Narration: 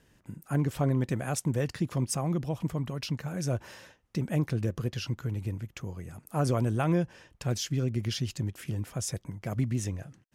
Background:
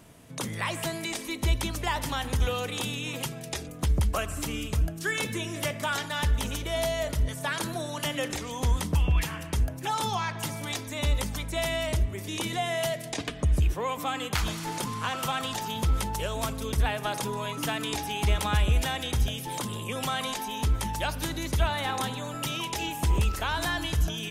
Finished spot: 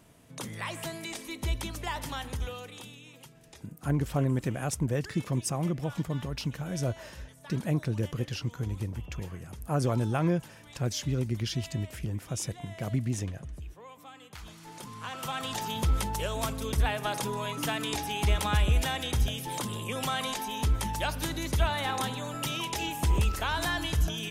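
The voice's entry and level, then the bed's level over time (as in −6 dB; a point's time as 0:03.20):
3.35 s, −0.5 dB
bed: 0:02.18 −5.5 dB
0:03.17 −18.5 dB
0:14.34 −18.5 dB
0:15.60 −1 dB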